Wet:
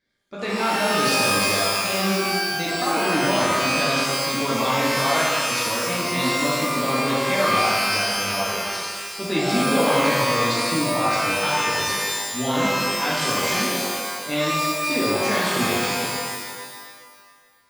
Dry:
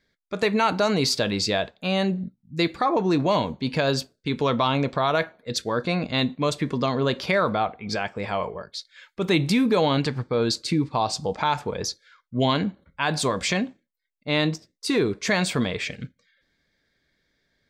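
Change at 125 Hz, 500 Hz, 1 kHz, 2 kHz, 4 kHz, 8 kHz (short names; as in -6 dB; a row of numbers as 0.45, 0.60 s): -3.0, +1.0, +4.5, +7.0, +5.0, +9.5 dB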